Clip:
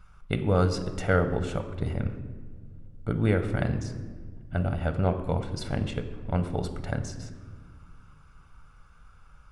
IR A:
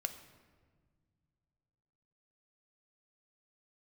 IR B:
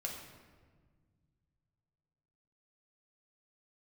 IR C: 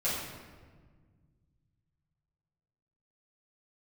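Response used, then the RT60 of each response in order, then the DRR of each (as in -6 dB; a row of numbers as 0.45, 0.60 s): A; not exponential, 1.6 s, 1.5 s; 7.5, -1.0, -10.5 dB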